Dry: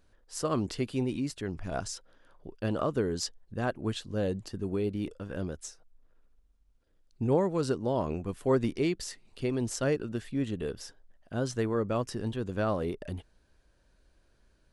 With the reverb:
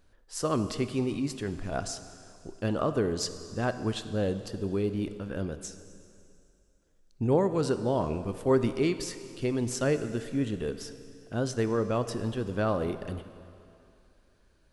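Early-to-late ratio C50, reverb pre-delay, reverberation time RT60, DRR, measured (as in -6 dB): 11.0 dB, 14 ms, 2.6 s, 10.0 dB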